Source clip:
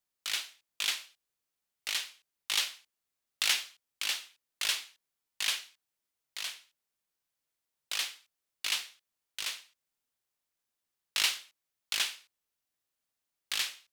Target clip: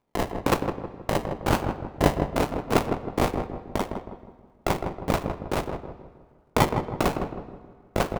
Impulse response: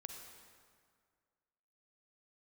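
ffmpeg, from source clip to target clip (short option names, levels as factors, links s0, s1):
-filter_complex "[0:a]lowpass=9100,asplit=2[s0][s1];[s1]acompressor=threshold=0.00794:ratio=4,volume=1.26[s2];[s0][s2]amix=inputs=2:normalize=0,acrusher=samples=34:mix=1:aa=0.000001:lfo=1:lforange=20.4:lforate=0.63,aeval=exprs='val(0)*sin(2*PI*360*n/s)':c=same,atempo=1.7,asplit=2[s3][s4];[s4]adelay=159,lowpass=f=1000:p=1,volume=0.562,asplit=2[s5][s6];[s6]adelay=159,lowpass=f=1000:p=1,volume=0.48,asplit=2[s7][s8];[s8]adelay=159,lowpass=f=1000:p=1,volume=0.48,asplit=2[s9][s10];[s10]adelay=159,lowpass=f=1000:p=1,volume=0.48,asplit=2[s11][s12];[s12]adelay=159,lowpass=f=1000:p=1,volume=0.48,asplit=2[s13][s14];[s14]adelay=159,lowpass=f=1000:p=1,volume=0.48[s15];[s3][s5][s7][s9][s11][s13][s15]amix=inputs=7:normalize=0,asplit=2[s16][s17];[1:a]atrim=start_sample=2205,lowpass=3500[s18];[s17][s18]afir=irnorm=-1:irlink=0,volume=0.531[s19];[s16][s19]amix=inputs=2:normalize=0,volume=2.82"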